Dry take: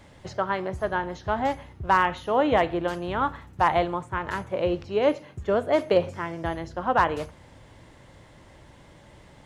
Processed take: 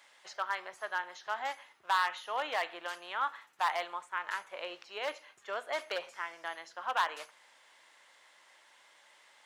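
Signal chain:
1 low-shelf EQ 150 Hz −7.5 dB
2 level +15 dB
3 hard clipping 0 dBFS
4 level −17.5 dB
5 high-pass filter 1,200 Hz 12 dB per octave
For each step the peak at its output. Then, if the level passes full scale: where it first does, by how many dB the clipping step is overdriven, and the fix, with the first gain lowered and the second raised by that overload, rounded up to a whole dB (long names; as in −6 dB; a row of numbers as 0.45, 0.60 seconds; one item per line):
−9.0, +6.0, 0.0, −17.5, −16.5 dBFS
step 2, 6.0 dB
step 2 +9 dB, step 4 −11.5 dB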